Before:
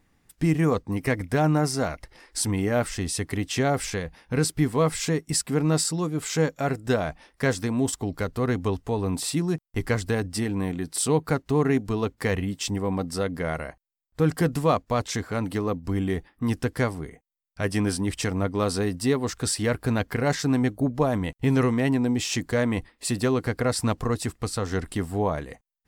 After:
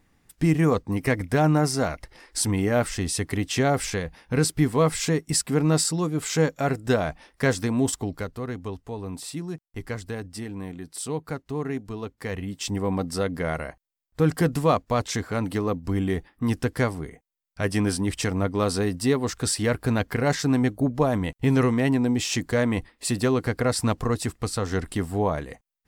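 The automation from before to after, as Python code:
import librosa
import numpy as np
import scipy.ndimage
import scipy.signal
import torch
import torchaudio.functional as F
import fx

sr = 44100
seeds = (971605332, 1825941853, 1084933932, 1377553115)

y = fx.gain(x, sr, db=fx.line((7.96, 1.5), (8.46, -7.5), (12.21, -7.5), (12.81, 1.0)))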